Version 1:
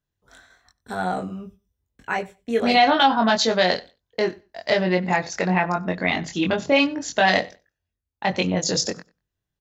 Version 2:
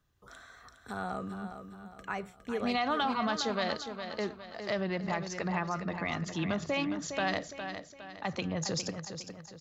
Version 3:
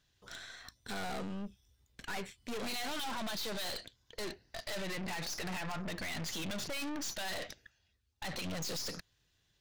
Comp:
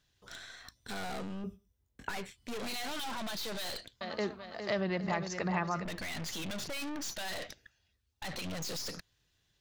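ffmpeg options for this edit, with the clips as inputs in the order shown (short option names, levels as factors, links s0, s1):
-filter_complex "[2:a]asplit=3[s0][s1][s2];[s0]atrim=end=1.442[s3];[0:a]atrim=start=1.438:end=2.092[s4];[s1]atrim=start=2.088:end=4.012[s5];[1:a]atrim=start=4.008:end=5.852[s6];[s2]atrim=start=5.848[s7];[s3][s4]acrossfade=d=0.004:c1=hsin:c2=hsin[s8];[s8][s5]acrossfade=d=0.004:c1=hsin:c2=hsin[s9];[s9][s6]acrossfade=d=0.004:c1=hsin:c2=hsin[s10];[s10][s7]acrossfade=d=0.004:c1=hsin:c2=hsin"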